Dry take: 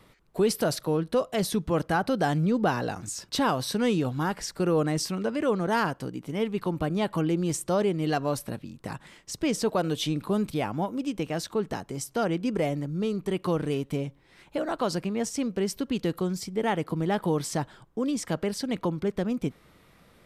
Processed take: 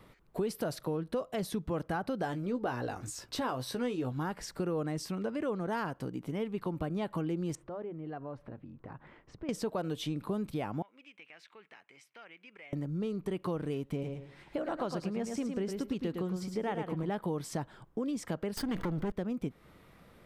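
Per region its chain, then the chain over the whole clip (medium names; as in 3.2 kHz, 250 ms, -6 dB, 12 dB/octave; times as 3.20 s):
2.22–4.12 s: peaking EQ 180 Hz -12 dB 0.33 oct + doubling 16 ms -8.5 dB
7.55–9.49 s: low-pass 1.7 kHz + band-stop 190 Hz, Q 5.2 + compression 2:1, threshold -49 dBFS
10.82–12.73 s: band-pass filter 2.3 kHz, Q 3.6 + compression 2:1, threshold -50 dBFS
13.91–17.10 s: treble shelf 11 kHz -8.5 dB + feedback delay 109 ms, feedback 23%, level -6.5 dB
18.57–19.12 s: comb filter that takes the minimum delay 0.62 ms + level flattener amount 70%
whole clip: compression 2.5:1, threshold -34 dBFS; peaking EQ 6.6 kHz -6 dB 2.5 oct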